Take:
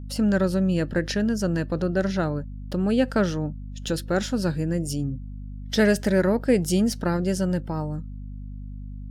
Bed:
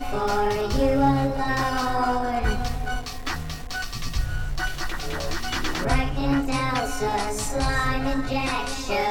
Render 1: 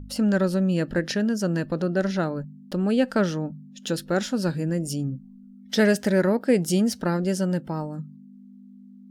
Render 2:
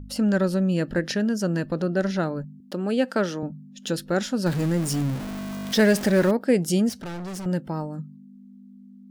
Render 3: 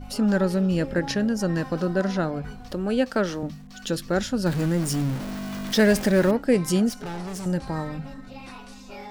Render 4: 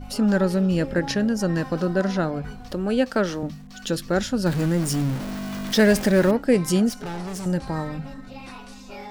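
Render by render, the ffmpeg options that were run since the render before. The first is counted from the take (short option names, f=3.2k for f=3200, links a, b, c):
-af "bandreject=f=50:t=h:w=4,bandreject=f=100:t=h:w=4,bandreject=f=150:t=h:w=4"
-filter_complex "[0:a]asettb=1/sr,asplit=3[a][b][c];[a]atrim=end=2.604[d];[b]atrim=start=2.6:end=3.43,asetpts=PTS-STARTPTS,afade=t=in:d=0.004:c=qsin,afade=t=out:st=0.826:d=0.004:c=qsin,highpass=230[e];[c]atrim=start=3.426[f];[d][e]acrossfade=d=0.004:c1=hsin:c2=qsin[g];[g][f]acrossfade=d=0.004:c1=qsin:c2=hsin,asettb=1/sr,asplit=3[h][i][j];[h]atrim=end=4.464[k];[i]atrim=start=4.46:end=6.31,asetpts=PTS-STARTPTS,afade=t=in:d=0.004:c=qsin,afade=t=out:st=1.846:d=0.004:c=qsin,aeval=exprs='val(0)+0.5*0.0422*sgn(val(0))':c=same[l];[j]atrim=start=6.306[m];[k][l]acrossfade=d=0.004:c1=hsin:c2=qsin[n];[n][m]acrossfade=d=0.004:c1=qsin:c2=hsin,asettb=1/sr,asplit=3[o][p][q];[o]atrim=end=6.894[r];[p]atrim=start=6.89:end=7.46,asetpts=PTS-STARTPTS,afade=t=in:d=0.004:c=qsin,afade=t=out:st=0.566:d=0.004:c=qsin,volume=32dB,asoftclip=hard,volume=-32dB[s];[q]atrim=start=7.456[t];[r][s]acrossfade=d=0.004:c1=hsin:c2=qsin[u];[u][t]acrossfade=d=0.004:c1=qsin:c2=hsin"
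-filter_complex "[1:a]volume=-16.5dB[a];[0:a][a]amix=inputs=2:normalize=0"
-af "volume=1.5dB"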